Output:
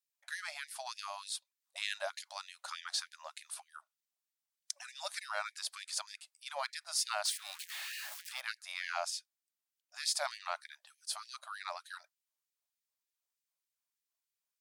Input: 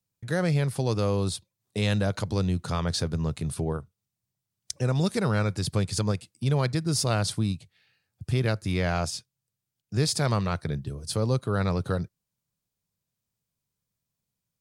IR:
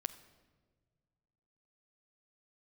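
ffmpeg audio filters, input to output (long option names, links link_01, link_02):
-filter_complex "[0:a]asettb=1/sr,asplit=3[link_01][link_02][link_03];[link_01]atrim=end=7.254[link_04];[link_02]atrim=start=7.25:end=8.41,asetpts=PTS-STARTPTS,afade=type=in:duration=0.004:curve=qsin,afade=type=out:start_time=1.156:duration=0.004:curve=qsin,aeval=exprs='val(0)+0.5*0.0266*sgn(val(0))':channel_layout=same[link_05];[link_03]atrim=start=8.406[link_06];[link_04][link_05]acrossfade=duration=0.004:curve1=hsin:curve2=qsin[link_07];[link_07][link_06]acrossfade=duration=0.004:curve1=qsin:curve2=hsin,afftfilt=real='re*gte(b*sr/1024,540*pow(1700/540,0.5+0.5*sin(2*PI*3.3*pts/sr)))':imag='im*gte(b*sr/1024,540*pow(1700/540,0.5+0.5*sin(2*PI*3.3*pts/sr)))':win_size=1024:overlap=0.75,volume=-5dB"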